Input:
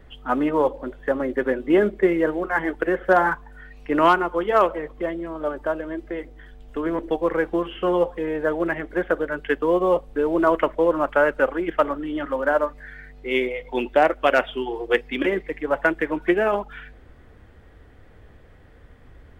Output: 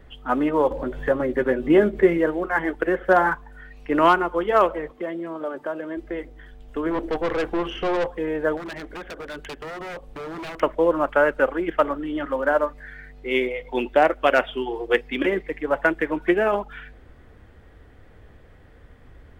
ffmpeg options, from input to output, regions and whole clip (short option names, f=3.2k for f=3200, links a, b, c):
-filter_complex "[0:a]asettb=1/sr,asplit=3[a][b][c];[a]atrim=end=0.714[d];[b]atrim=start=0.71:end=2.18,asetpts=PTS-STARTPTS,afade=t=in:d=0.004:c=qsin,afade=t=out:st=1.466:d=0.004:c=qsin,equalizer=f=96:w=0.95:g=9,acompressor=mode=upward:threshold=-21dB:ratio=2.5:attack=3.2:release=140:knee=2.83:detection=peak,asplit=2[e][f];[f]adelay=13,volume=-9dB[g];[e][g]amix=inputs=2:normalize=0,atrim=end_sample=64827[h];[c]atrim=start=2.176[i];[d][h]acrossfade=d=0.004:c1=hsin:c2=qsin[j];[j][i]acrossfade=d=0.004:c1=qsin:c2=hsin,asettb=1/sr,asplit=3[k][l][m];[k]atrim=end=4.904[n];[l]atrim=start=4.9:end=5.97,asetpts=PTS-STARTPTS,afade=t=in:d=0.004:c=qsin,afade=t=out:st=1.066:d=0.004:c=qsin,highpass=71,bandreject=f=50:t=h:w=6,bandreject=f=100:t=h:w=6,bandreject=f=150:t=h:w=6,bandreject=f=200:t=h:w=6,acompressor=threshold=-26dB:ratio=2:attack=3.2:release=140:knee=1:detection=peak[o];[m]atrim=start=5.966[p];[n][o]acrossfade=d=0.004:c1=hsin:c2=qsin[q];[q][p]acrossfade=d=0.004:c1=qsin:c2=hsin,asettb=1/sr,asplit=3[r][s][t];[r]atrim=end=6.914[u];[s]atrim=start=6.91:end=8.07,asetpts=PTS-STARTPTS,afade=t=in:d=0.004:c=qsin,afade=t=out:st=1.156:d=0.004:c=qsin,acontrast=25,aeval=exprs='(tanh(10*val(0)+0.35)-tanh(0.35))/10':c=same[v];[t]atrim=start=8.066[w];[u][v]acrossfade=d=0.004:c1=hsin:c2=qsin[x];[x][w]acrossfade=d=0.004:c1=qsin:c2=hsin,asettb=1/sr,asplit=3[y][z][aa];[y]atrim=end=8.574[ab];[z]atrim=start=8.57:end=10.61,asetpts=PTS-STARTPTS,afade=t=in:d=0.004:c=qsin,afade=t=out:st=2.036:d=0.004:c=qsin,acompressor=threshold=-29dB:ratio=2.5:attack=3.2:release=140:knee=1:detection=peak,aeval=exprs='0.0376*(abs(mod(val(0)/0.0376+3,4)-2)-1)':c=same[ac];[aa]atrim=start=10.606[ad];[ab][ac]acrossfade=d=0.004:c1=hsin:c2=qsin[ae];[ae][ad]acrossfade=d=0.004:c1=qsin:c2=hsin"